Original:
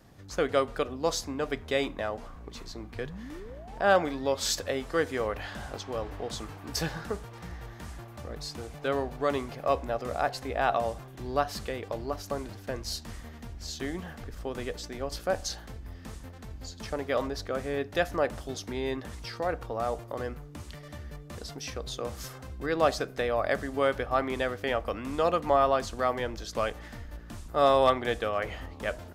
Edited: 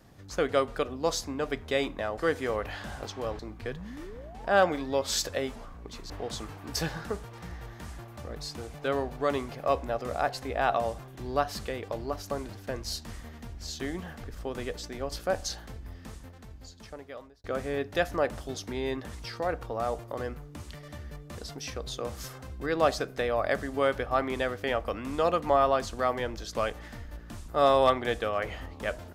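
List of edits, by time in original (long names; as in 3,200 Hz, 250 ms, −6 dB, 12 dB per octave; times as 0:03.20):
0:02.18–0:02.72: swap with 0:04.89–0:06.10
0:15.85–0:17.44: fade out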